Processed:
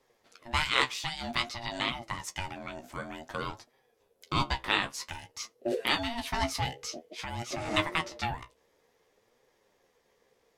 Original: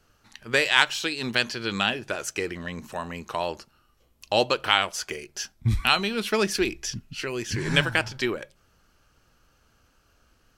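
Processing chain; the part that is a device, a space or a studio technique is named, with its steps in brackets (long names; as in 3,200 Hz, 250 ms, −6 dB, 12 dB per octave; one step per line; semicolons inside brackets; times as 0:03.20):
alien voice (ring modulation 470 Hz; flanger 0.53 Hz, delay 7.3 ms, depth 9 ms, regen +37%)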